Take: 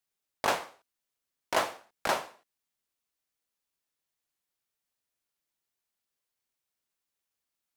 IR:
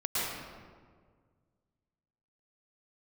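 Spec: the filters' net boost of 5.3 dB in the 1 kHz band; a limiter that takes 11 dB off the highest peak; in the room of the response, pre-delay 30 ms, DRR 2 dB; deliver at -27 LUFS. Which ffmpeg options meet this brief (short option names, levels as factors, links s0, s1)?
-filter_complex "[0:a]equalizer=f=1000:t=o:g=6.5,alimiter=limit=0.106:level=0:latency=1,asplit=2[s0][s1];[1:a]atrim=start_sample=2205,adelay=30[s2];[s1][s2]afir=irnorm=-1:irlink=0,volume=0.299[s3];[s0][s3]amix=inputs=2:normalize=0,volume=2.11"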